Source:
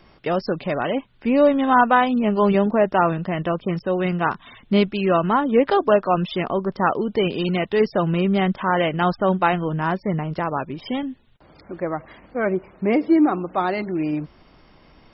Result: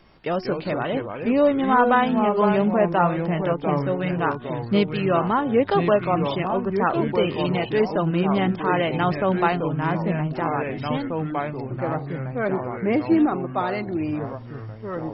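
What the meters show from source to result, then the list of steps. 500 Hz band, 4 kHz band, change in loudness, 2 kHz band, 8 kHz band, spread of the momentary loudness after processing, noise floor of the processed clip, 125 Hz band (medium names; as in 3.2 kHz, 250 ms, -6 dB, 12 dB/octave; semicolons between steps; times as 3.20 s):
-1.0 dB, -2.0 dB, -1.5 dB, -2.0 dB, no reading, 8 LU, -36 dBFS, +0.5 dB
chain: de-hum 365.2 Hz, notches 4; ever faster or slower copies 141 ms, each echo -3 st, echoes 3, each echo -6 dB; trim -2.5 dB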